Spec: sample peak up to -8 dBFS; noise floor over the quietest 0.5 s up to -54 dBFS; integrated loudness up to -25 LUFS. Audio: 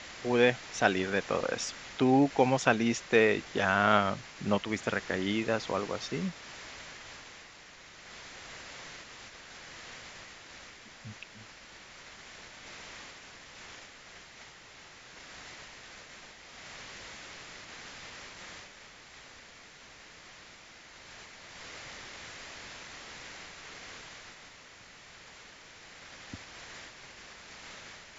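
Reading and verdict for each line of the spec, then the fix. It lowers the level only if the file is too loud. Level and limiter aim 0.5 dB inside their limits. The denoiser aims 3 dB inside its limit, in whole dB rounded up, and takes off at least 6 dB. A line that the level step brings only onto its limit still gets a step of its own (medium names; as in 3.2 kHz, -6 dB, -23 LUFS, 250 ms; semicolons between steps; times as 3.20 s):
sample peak -6.5 dBFS: fail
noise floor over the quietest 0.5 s -53 dBFS: fail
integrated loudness -30.5 LUFS: pass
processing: noise reduction 6 dB, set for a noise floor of -53 dBFS; peak limiter -8.5 dBFS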